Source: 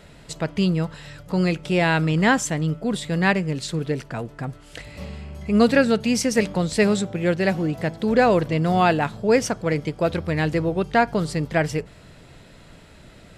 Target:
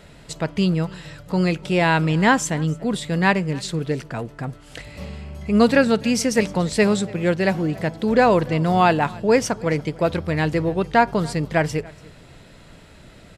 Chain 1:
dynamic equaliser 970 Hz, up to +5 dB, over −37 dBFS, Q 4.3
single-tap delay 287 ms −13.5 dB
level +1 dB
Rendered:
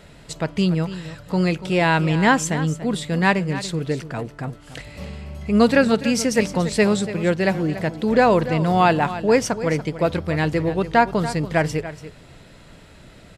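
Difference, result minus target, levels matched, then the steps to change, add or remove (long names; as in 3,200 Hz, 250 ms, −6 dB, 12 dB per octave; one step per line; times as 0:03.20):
echo-to-direct +9.5 dB
change: single-tap delay 287 ms −23 dB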